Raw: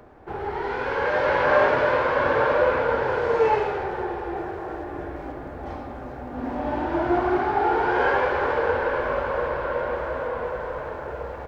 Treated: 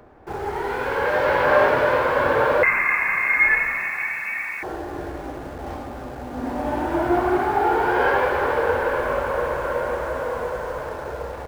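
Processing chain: 2.63–4.63 s: frequency inversion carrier 2.6 kHz; in parallel at -12 dB: bit crusher 6-bit

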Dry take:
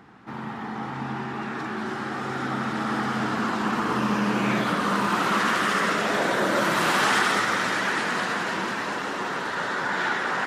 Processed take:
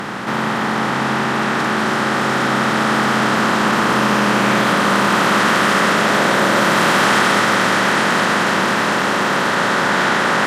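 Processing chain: spectral levelling over time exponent 0.4; trim +3.5 dB

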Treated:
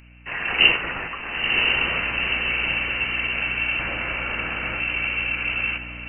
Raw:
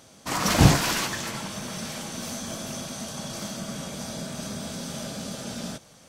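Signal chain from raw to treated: rattle on loud lows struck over -21 dBFS, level -16 dBFS; 3.79–4.80 s: tilt shelf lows -7.5 dB, about 750 Hz; frequency inversion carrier 2.9 kHz; hum 60 Hz, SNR 19 dB; echo that smears into a reverb 961 ms, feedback 53%, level -12 dB; level rider gain up to 11 dB; trim -1 dB

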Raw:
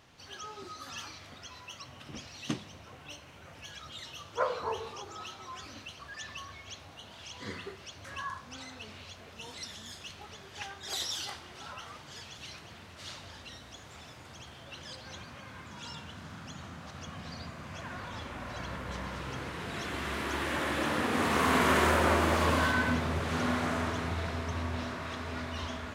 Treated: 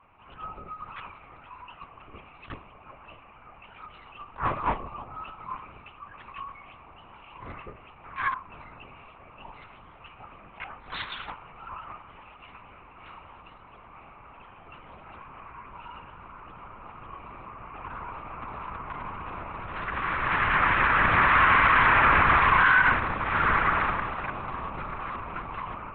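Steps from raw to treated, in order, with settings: local Wiener filter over 25 samples; high-pass 290 Hz; high-order bell 1.6 kHz +13.5 dB; LPC vocoder at 8 kHz whisper; peak limiter -13 dBFS, peak gain reduction 10.5 dB; attacks held to a fixed rise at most 230 dB/s; trim +2.5 dB

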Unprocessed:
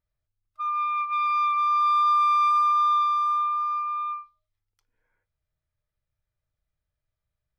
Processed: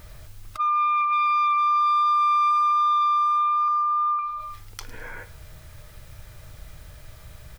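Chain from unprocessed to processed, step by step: 3.68–4.19 s: Butterworth band-stop 2.8 kHz, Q 1.2; feedback delay 105 ms, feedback 38%, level -20 dB; level flattener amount 70%

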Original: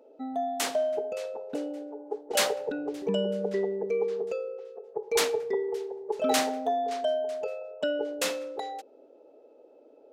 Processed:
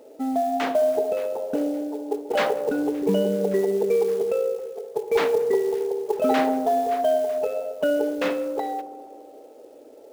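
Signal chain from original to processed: low-pass 2.1 kHz 12 dB/octave; bass shelf 300 Hz +3 dB; in parallel at -2.5 dB: peak limiter -25 dBFS, peak gain reduction 11.5 dB; on the sum: wow and flutter 16 cents; companded quantiser 6-bit; on a send: feedback echo behind a low-pass 68 ms, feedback 80%, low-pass 790 Hz, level -13.5 dB; on the sum: trim +2.5 dB

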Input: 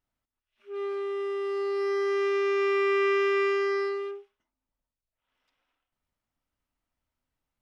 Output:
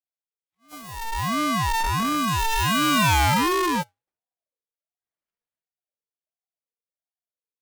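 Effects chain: square wave that keeps the level; Doppler pass-by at 3.15 s, 41 m/s, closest 7.4 m; in parallel at -7 dB: fuzz box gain 54 dB, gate -50 dBFS; on the sum: ring modulator with a swept carrier 600 Hz, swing 25%, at 1.4 Hz

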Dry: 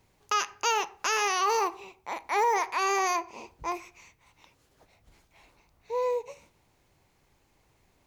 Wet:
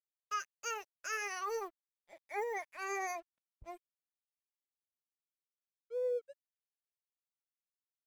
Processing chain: expander on every frequency bin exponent 2; static phaser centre 980 Hz, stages 6; crossover distortion -56 dBFS; trim -4 dB

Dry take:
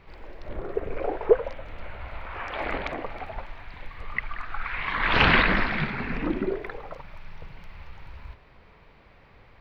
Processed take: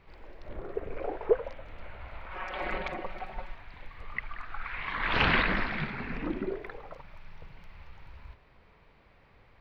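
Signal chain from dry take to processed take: 2.31–3.55 s: comb 5.4 ms, depth 87%; trim -6 dB

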